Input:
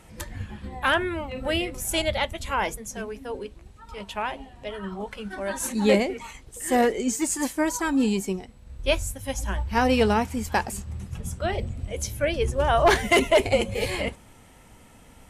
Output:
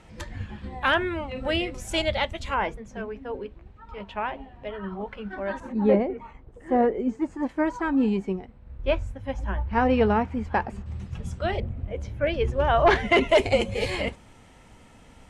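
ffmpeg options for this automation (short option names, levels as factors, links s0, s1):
-af "asetnsamples=n=441:p=0,asendcmd='2.54 lowpass f 2300;5.6 lowpass f 1100;7.49 lowpass f 1900;10.86 lowpass f 4700;11.6 lowpass f 1800;12.27 lowpass f 3200;13.29 lowpass f 6800',lowpass=5400"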